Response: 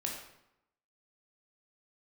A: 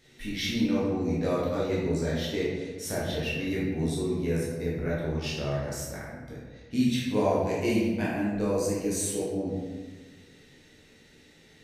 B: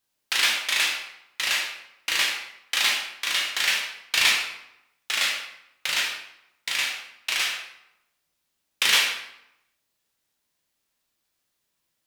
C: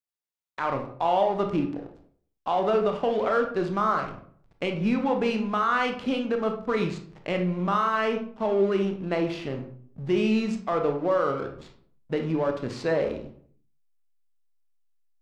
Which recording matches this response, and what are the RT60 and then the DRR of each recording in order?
B; 1.4, 0.85, 0.55 s; -7.0, -1.0, 4.0 dB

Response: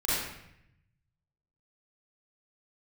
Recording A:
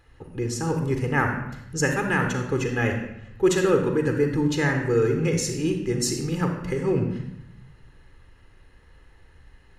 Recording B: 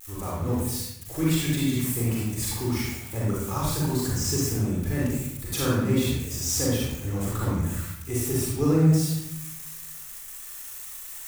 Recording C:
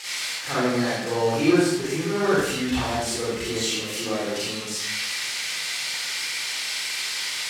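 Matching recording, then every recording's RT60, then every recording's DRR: C; 0.75, 0.75, 0.75 s; 4.0, -6.0, -10.0 dB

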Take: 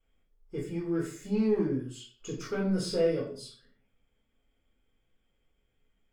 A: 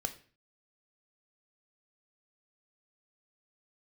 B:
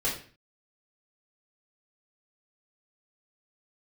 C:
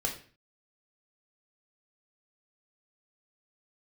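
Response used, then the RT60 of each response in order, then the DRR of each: B; 0.40, 0.40, 0.40 s; 6.5, -8.5, -0.5 dB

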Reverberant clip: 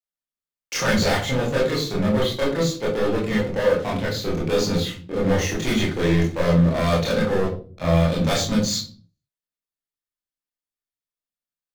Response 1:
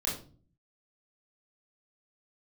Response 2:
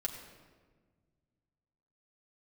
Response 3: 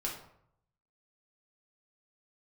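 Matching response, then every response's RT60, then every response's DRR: 1; 0.40, 1.5, 0.70 s; -5.5, -1.0, -3.0 dB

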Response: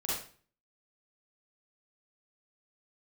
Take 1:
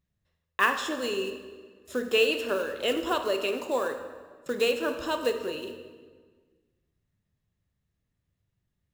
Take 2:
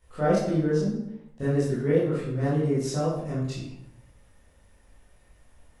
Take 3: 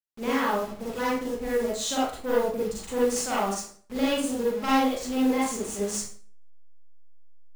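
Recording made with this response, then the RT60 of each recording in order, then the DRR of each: 3; 1.6, 0.80, 0.45 s; 6.0, -10.5, -8.0 dB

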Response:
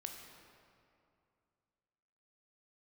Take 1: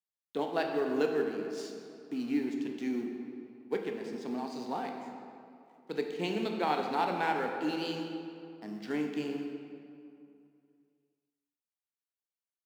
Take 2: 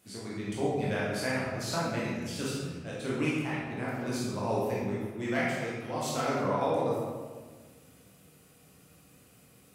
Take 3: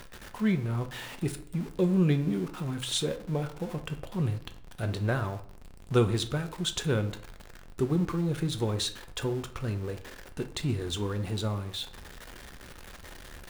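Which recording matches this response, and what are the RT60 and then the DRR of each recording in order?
1; 2.5, 1.5, 0.55 s; 2.5, -7.5, 7.5 dB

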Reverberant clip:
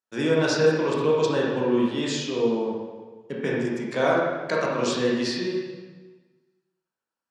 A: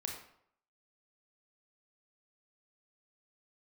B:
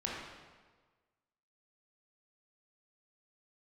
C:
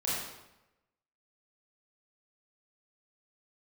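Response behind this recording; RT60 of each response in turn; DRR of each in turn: B; 0.65, 1.4, 0.95 s; 0.5, -4.5, -8.0 dB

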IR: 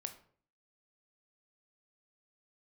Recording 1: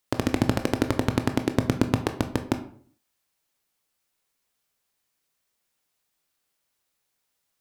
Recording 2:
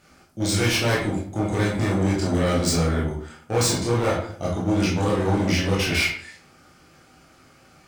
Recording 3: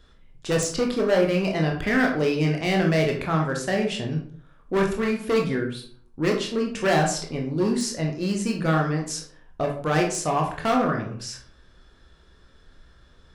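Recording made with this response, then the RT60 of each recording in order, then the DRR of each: 1; 0.50, 0.50, 0.50 s; 7.0, -5.5, 0.0 dB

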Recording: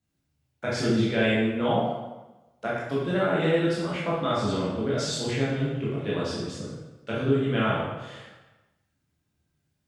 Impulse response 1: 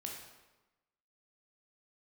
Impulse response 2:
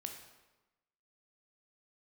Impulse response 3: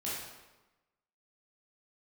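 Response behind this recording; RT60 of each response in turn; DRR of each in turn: 3; 1.1, 1.1, 1.1 s; -0.5, 3.5, -8.0 dB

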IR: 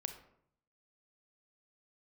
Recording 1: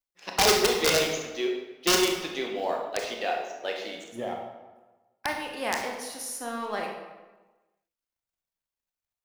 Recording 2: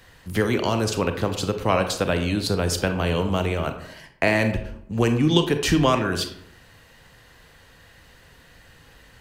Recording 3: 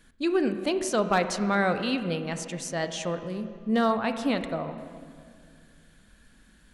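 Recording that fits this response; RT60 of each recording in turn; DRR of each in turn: 2; 1.2, 0.65, 2.2 s; 1.0, 7.0, 8.5 dB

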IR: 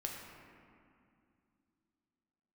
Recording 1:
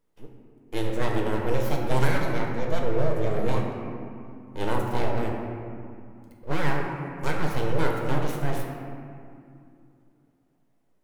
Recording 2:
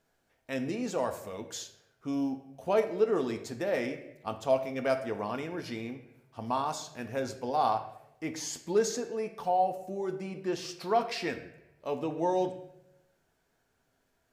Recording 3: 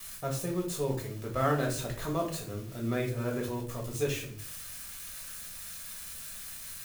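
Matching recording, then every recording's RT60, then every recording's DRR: 1; 2.5, 0.85, 0.50 s; -0.5, 6.0, -1.0 dB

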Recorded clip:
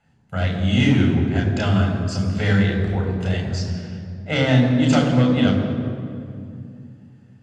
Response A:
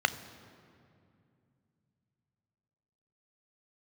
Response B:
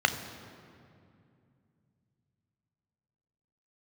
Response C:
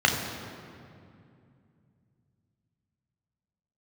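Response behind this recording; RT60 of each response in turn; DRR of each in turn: C; 2.5, 2.5, 2.5 s; 12.0, 7.5, 1.0 dB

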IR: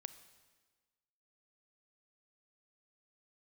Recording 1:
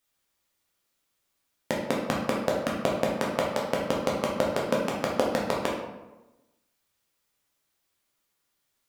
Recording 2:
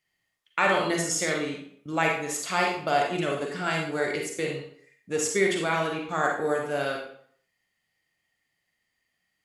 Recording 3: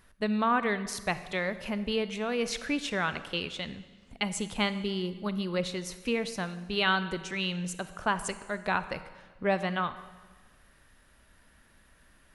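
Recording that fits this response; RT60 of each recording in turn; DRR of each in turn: 3; 1.1, 0.60, 1.4 s; -3.5, 0.0, 12.5 dB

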